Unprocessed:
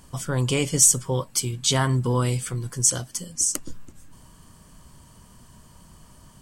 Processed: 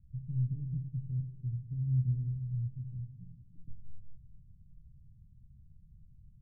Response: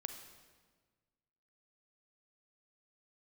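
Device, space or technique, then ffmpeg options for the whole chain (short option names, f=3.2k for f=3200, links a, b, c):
club heard from the street: -filter_complex "[0:a]alimiter=limit=-13.5dB:level=0:latency=1,lowpass=f=140:w=0.5412,lowpass=f=140:w=1.3066[a];[1:a]atrim=start_sample=2205[b];[a][b]afir=irnorm=-1:irlink=0,volume=-2.5dB"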